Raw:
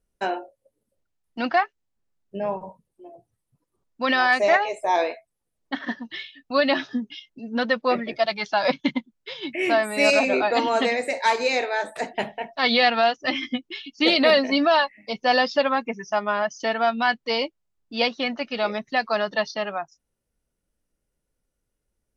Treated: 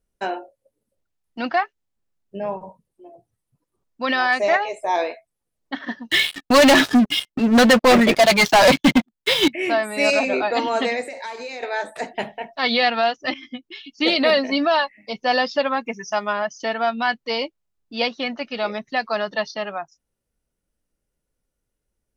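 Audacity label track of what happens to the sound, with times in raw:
6.110000	9.480000	waveshaping leveller passes 5
11.010000	11.630000	compression 5:1, threshold -30 dBFS
13.340000	13.960000	fade in, from -13.5 dB
15.860000	16.330000	treble shelf 3.5 kHz +10.5 dB

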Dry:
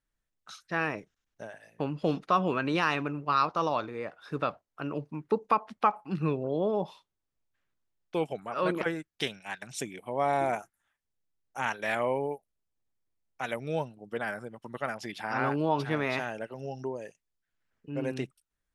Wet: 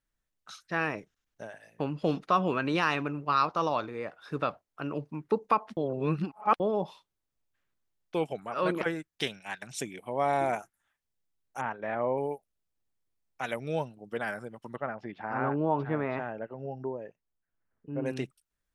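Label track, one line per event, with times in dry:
5.770000	6.600000	reverse
11.610000	12.180000	low-pass 1.2 kHz
14.760000	18.060000	low-pass 1.4 kHz

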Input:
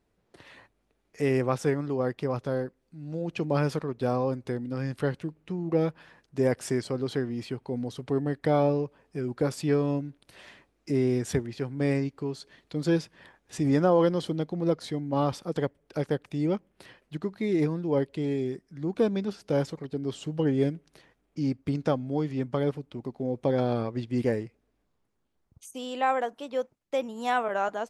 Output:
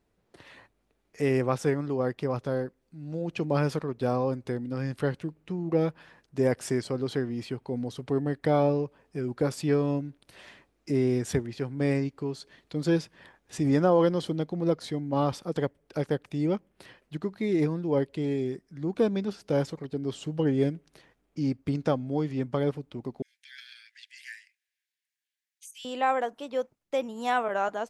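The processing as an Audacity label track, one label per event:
23.220000	25.850000	steep high-pass 1.6 kHz 96 dB/octave

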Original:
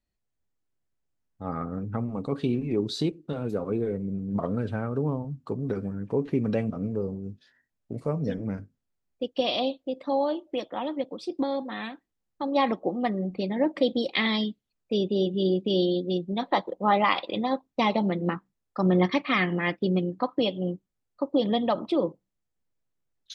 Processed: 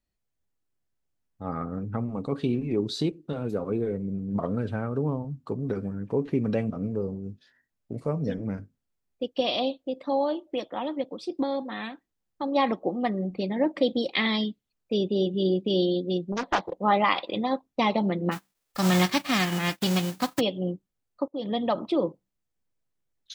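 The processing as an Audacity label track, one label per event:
16.320000	16.750000	loudspeaker Doppler distortion depth 0.74 ms
18.310000	20.390000	formants flattened exponent 0.3
21.280000	21.830000	fade in equal-power, from -23 dB

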